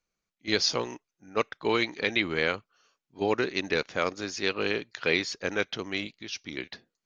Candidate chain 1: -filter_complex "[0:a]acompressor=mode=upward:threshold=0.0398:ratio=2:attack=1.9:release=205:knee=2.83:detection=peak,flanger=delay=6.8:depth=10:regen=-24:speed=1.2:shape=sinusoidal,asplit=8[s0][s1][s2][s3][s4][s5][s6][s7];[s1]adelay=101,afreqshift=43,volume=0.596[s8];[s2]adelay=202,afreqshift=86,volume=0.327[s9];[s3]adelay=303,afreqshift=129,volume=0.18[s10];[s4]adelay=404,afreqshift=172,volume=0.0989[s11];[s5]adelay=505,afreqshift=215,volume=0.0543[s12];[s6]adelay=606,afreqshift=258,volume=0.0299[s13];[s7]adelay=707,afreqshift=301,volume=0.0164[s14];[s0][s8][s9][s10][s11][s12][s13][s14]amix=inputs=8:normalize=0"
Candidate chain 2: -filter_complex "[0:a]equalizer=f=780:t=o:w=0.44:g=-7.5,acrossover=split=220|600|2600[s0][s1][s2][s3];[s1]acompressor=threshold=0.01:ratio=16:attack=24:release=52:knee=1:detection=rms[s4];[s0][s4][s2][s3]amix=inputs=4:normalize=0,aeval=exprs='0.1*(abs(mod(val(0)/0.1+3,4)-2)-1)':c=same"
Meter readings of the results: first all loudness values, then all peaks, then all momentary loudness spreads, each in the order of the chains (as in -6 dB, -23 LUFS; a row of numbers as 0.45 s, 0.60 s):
-31.0 LUFS, -32.0 LUFS; -13.0 dBFS, -20.0 dBFS; 10 LU, 10 LU